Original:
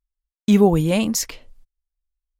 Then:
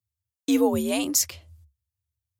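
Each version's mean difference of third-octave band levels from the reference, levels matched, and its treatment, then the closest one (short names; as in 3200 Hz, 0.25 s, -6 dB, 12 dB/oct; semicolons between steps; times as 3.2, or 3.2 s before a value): 7.5 dB: high shelf 4100 Hz +11.5 dB; frequency shift +67 Hz; gain -7 dB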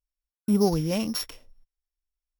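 4.5 dB: sample sorter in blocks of 8 samples; spectral gain 0.32–0.61, 1500–7400 Hz -11 dB; gain -7.5 dB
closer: second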